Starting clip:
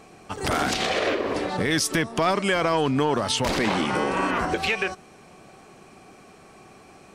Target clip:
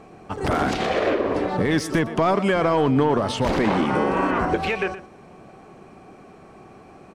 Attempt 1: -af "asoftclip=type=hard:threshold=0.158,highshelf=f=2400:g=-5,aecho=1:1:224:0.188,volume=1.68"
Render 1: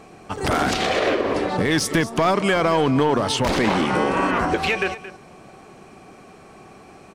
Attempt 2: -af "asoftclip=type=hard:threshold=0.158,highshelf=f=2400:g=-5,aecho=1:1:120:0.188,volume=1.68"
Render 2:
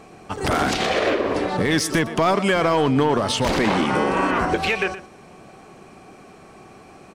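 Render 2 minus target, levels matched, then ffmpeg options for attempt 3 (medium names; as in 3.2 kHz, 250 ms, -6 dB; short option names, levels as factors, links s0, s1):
4 kHz band +5.0 dB
-af "asoftclip=type=hard:threshold=0.158,highshelf=f=2400:g=-14.5,aecho=1:1:120:0.188,volume=1.68"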